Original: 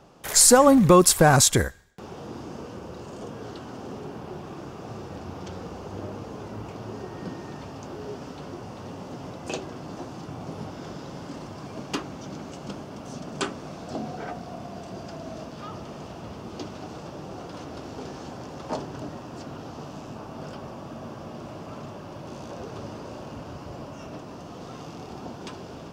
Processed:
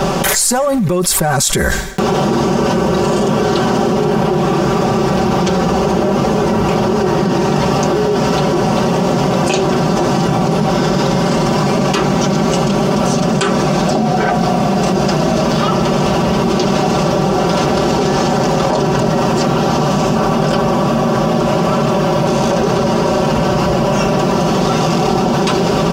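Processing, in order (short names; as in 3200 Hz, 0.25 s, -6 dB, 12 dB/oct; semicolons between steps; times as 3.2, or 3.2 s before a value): comb 5.2 ms, depth 84%; in parallel at -9.5 dB: soft clip -12 dBFS, distortion -10 dB; on the sum: fast leveller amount 100%; gain -7 dB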